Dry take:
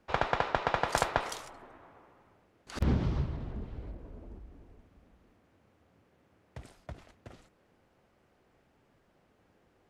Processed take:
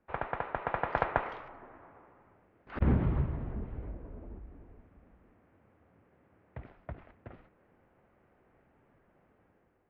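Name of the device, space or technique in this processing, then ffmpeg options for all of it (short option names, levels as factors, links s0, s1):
action camera in a waterproof case: -af "lowpass=f=2300:w=0.5412,lowpass=f=2300:w=1.3066,dynaudnorm=f=550:g=3:m=2.51,volume=0.473" -ar 32000 -c:a aac -b:a 96k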